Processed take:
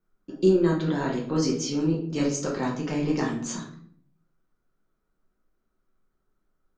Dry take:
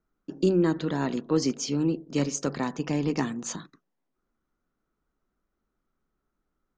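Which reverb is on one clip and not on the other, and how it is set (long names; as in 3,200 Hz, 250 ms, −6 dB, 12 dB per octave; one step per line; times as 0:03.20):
rectangular room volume 78 cubic metres, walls mixed, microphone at 0.97 metres
level −3 dB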